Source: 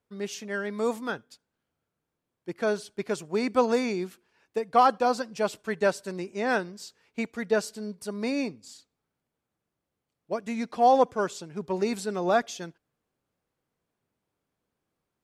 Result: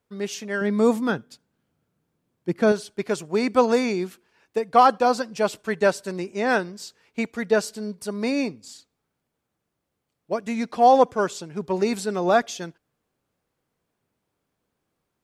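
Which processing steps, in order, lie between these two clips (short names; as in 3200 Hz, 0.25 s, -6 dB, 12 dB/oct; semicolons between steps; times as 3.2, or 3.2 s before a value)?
0.61–2.72 bell 170 Hz +9 dB 2.2 oct; gain +4.5 dB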